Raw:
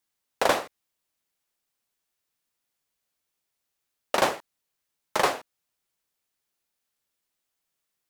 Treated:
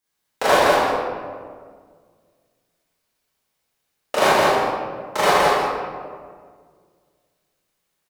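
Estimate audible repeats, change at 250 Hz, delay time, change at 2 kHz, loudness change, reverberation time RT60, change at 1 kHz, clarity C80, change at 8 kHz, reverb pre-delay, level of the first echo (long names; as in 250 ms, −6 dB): 1, +10.0 dB, 168 ms, +10.0 dB, +7.5 dB, 1.8 s, +11.0 dB, −3.5 dB, +6.0 dB, 22 ms, −3.5 dB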